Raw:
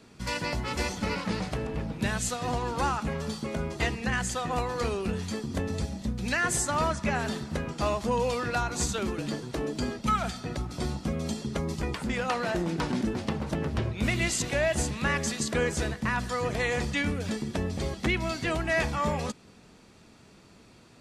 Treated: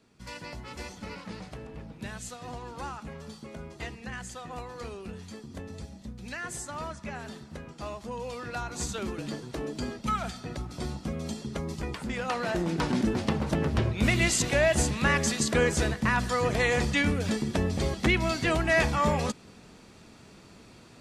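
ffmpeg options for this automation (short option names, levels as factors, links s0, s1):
-af "volume=1.41,afade=t=in:st=8.19:d=0.88:silence=0.446684,afade=t=in:st=12.15:d=1.01:silence=0.501187"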